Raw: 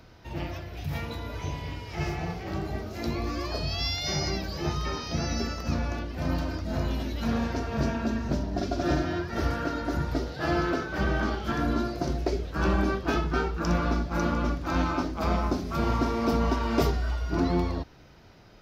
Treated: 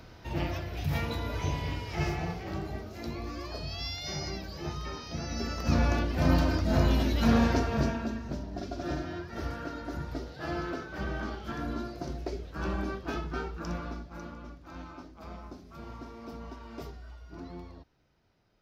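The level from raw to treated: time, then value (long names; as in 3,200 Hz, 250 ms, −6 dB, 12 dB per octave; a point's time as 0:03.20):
0:01.75 +2 dB
0:03.08 −7 dB
0:05.27 −7 dB
0:05.82 +4.5 dB
0:07.53 +4.5 dB
0:08.23 −8 dB
0:13.56 −8 dB
0:14.40 −18 dB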